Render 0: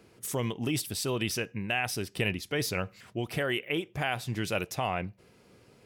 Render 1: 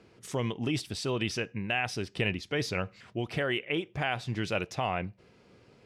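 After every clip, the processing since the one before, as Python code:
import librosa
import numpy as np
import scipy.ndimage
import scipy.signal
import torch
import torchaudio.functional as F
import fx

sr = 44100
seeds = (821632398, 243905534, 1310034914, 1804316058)

y = scipy.signal.sosfilt(scipy.signal.butter(2, 5500.0, 'lowpass', fs=sr, output='sos'), x)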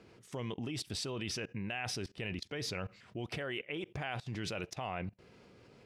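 y = fx.level_steps(x, sr, step_db=21)
y = y * librosa.db_to_amplitude(3.5)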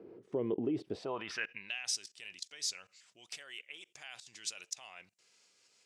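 y = fx.filter_sweep_bandpass(x, sr, from_hz=380.0, to_hz=7300.0, start_s=0.87, end_s=1.9, q=2.4)
y = y * librosa.db_to_amplitude(11.5)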